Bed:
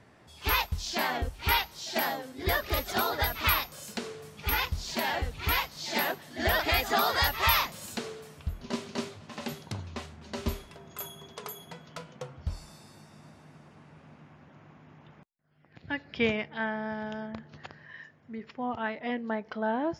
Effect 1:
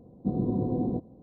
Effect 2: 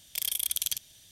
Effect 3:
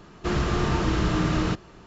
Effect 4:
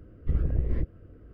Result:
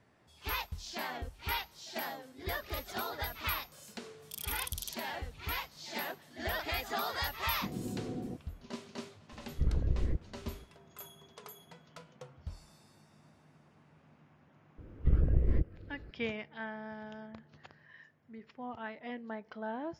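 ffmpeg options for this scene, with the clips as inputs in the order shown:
-filter_complex "[4:a]asplit=2[a][b];[0:a]volume=-9.5dB[c];[2:a]asuperstop=centerf=2000:order=4:qfactor=1.7,atrim=end=1.11,asetpts=PTS-STARTPTS,volume=-11.5dB,afade=t=in:d=0.1,afade=t=out:st=1.01:d=0.1,adelay=4160[d];[1:a]atrim=end=1.22,asetpts=PTS-STARTPTS,volume=-11.5dB,afade=t=in:d=0.004:c=hsin,afade=t=out:st=1.216:d=0.004:c=hsin,adelay=7370[e];[a]atrim=end=1.33,asetpts=PTS-STARTPTS,volume=-4.5dB,afade=t=in:d=0.004:c=hsin,afade=t=out:st=1.326:d=0.004:c=hsin,adelay=9320[f];[b]atrim=end=1.33,asetpts=PTS-STARTPTS,volume=-1dB,afade=t=in:d=0.004:c=hsin,afade=t=out:st=1.326:d=0.004:c=hsin,adelay=14780[g];[c][d][e][f][g]amix=inputs=5:normalize=0"

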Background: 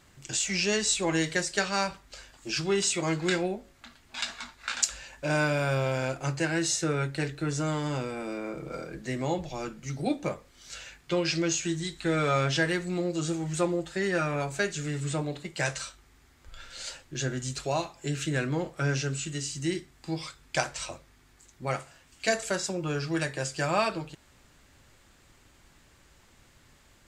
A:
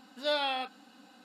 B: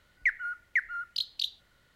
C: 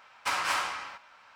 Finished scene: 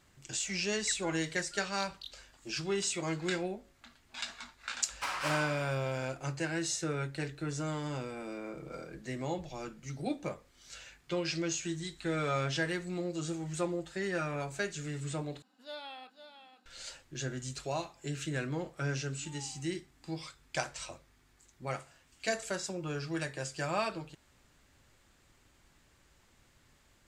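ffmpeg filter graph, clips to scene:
-filter_complex "[1:a]asplit=2[a][b];[0:a]volume=-6.5dB[c];[a]aecho=1:1:504:0.316[d];[b]asplit=3[e][f][g];[e]bandpass=f=300:t=q:w=8,volume=0dB[h];[f]bandpass=f=870:t=q:w=8,volume=-6dB[i];[g]bandpass=f=2.24k:t=q:w=8,volume=-9dB[j];[h][i][j]amix=inputs=3:normalize=0[k];[c]asplit=2[l][m];[l]atrim=end=15.424[n];[d]atrim=end=1.24,asetpts=PTS-STARTPTS,volume=-14.5dB[o];[m]atrim=start=16.656[p];[2:a]atrim=end=1.95,asetpts=PTS-STARTPTS,volume=-15dB,afade=t=in:d=0.004:c=hsin,afade=t=out:st=1.946:d=0.004:c=hsin,adelay=620[q];[3:a]atrim=end=1.35,asetpts=PTS-STARTPTS,volume=-6.5dB,afade=t=in:d=0.004:c=hsin,afade=t=out:st=1.346:d=0.004:c=hsin,adelay=4760[r];[k]atrim=end=1.24,asetpts=PTS-STARTPTS,volume=-10dB,afade=t=in:d=0.004:c=hsin,afade=t=out:st=1.236:d=0.004:c=hsin,adelay=18980[s];[n][o]acrossfade=d=0.004:c1=hsin:c2=hsin[t];[t][p]acrossfade=d=0.004:c1=hsin:c2=hsin[u];[u][q][r][s]amix=inputs=4:normalize=0"

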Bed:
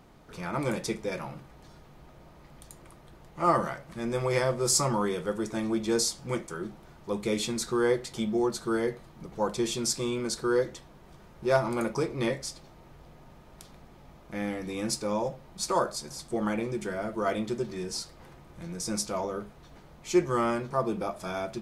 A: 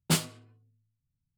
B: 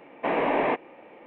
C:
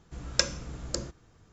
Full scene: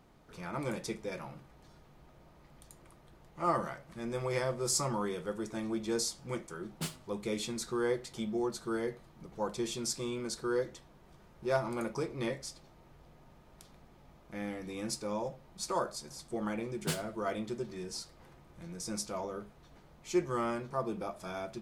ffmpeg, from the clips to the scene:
-filter_complex "[1:a]asplit=2[a][b];[0:a]volume=-6.5dB[c];[a]atrim=end=1.37,asetpts=PTS-STARTPTS,volume=-12.5dB,afade=t=in:d=0.004:c=hsin,afade=t=out:st=1.366:d=0.004:c=hsin,adelay=6710[d];[b]atrim=end=1.37,asetpts=PTS-STARTPTS,volume=-9.5dB,afade=t=in:d=0.004:c=hsin,afade=t=out:st=1.366:d=0.004:c=hsin,adelay=16770[e];[c][d][e]amix=inputs=3:normalize=0"

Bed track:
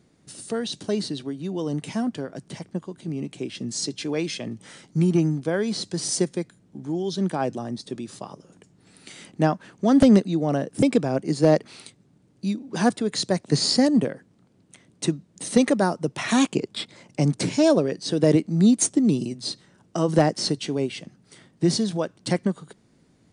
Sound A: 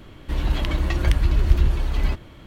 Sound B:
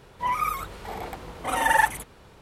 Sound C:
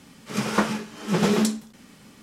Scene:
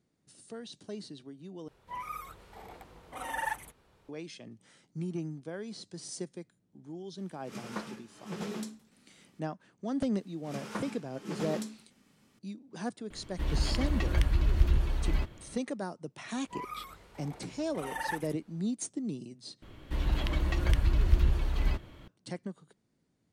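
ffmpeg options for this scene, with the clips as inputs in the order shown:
-filter_complex "[2:a]asplit=2[a][b];[3:a]asplit=2[c][d];[1:a]asplit=2[e][f];[0:a]volume=-16dB,asplit=3[g][h][i];[g]atrim=end=1.684[j];[a]atrim=end=2.41,asetpts=PTS-STARTPTS,volume=-14dB[k];[h]atrim=start=4.086:end=19.624[l];[f]atrim=end=2.46,asetpts=PTS-STARTPTS,volume=-7dB[m];[i]atrim=start=22.076[n];[c]atrim=end=2.22,asetpts=PTS-STARTPTS,volume=-17dB,afade=t=in:d=0.004:c=hsin,afade=t=out:st=2.216:d=0.004:c=hsin,adelay=7180[o];[d]atrim=end=2.22,asetpts=PTS-STARTPTS,volume=-16dB,afade=t=in:d=0.004:c=hsin,afade=t=out:st=2.216:d=0.004:c=hsin,adelay=10170[p];[e]atrim=end=2.46,asetpts=PTS-STARTPTS,volume=-7.5dB,afade=t=in:d=0.004:c=hsin,afade=t=out:st=2.456:d=0.004:c=hsin,adelay=13100[q];[b]atrim=end=2.41,asetpts=PTS-STARTPTS,volume=-15.5dB,afade=t=in:d=0.004:c=hsin,afade=t=out:st=2.406:d=0.004:c=hsin,adelay=16300[r];[j][k]acrossfade=d=0.004:c1=hsin:c2=hsin[s];[s][l]acrossfade=d=0.004:c1=hsin:c2=hsin[t];[t][m]acrossfade=d=0.004:c1=hsin:c2=hsin[u];[u][n]acrossfade=d=0.004:c1=hsin:c2=hsin[v];[v][o][p][q][r]amix=inputs=5:normalize=0"

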